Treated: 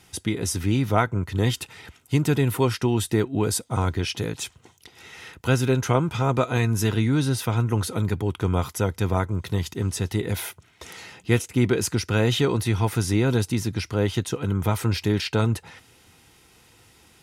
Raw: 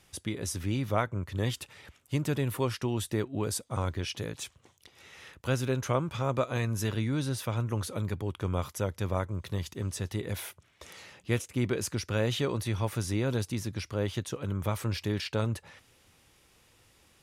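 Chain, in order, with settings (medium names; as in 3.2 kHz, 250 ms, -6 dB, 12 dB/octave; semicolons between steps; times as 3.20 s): comb of notches 570 Hz; trim +9 dB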